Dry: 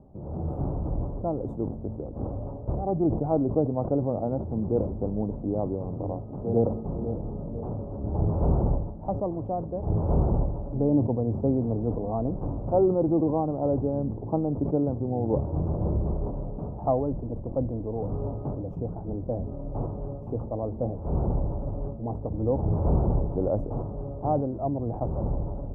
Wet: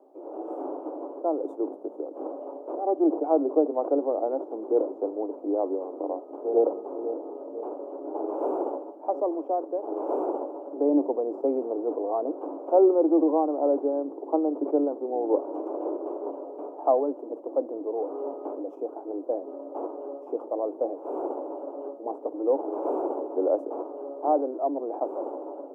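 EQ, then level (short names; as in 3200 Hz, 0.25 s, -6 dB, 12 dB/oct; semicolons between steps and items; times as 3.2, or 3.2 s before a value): steep high-pass 290 Hz 72 dB/oct; +3.5 dB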